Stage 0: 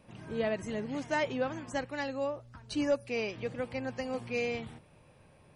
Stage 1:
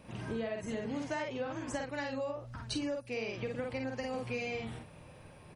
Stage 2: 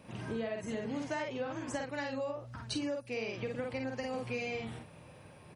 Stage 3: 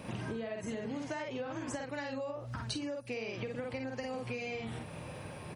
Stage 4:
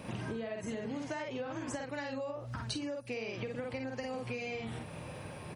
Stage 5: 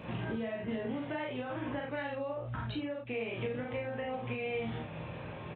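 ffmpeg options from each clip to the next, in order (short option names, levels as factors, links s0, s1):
-filter_complex "[0:a]asplit=2[s0][s1];[s1]adelay=49,volume=0.75[s2];[s0][s2]amix=inputs=2:normalize=0,acompressor=threshold=0.0126:ratio=10,volume=1.68"
-af "highpass=75"
-af "acompressor=threshold=0.00501:ratio=6,volume=2.99"
-af anull
-filter_complex "[0:a]aresample=8000,aresample=44100,asplit=2[s0][s1];[s1]aecho=0:1:17|36:0.473|0.631[s2];[s0][s2]amix=inputs=2:normalize=0"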